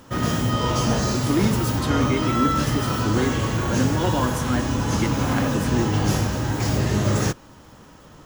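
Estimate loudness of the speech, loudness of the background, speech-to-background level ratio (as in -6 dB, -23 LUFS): -27.0 LUFS, -23.0 LUFS, -4.0 dB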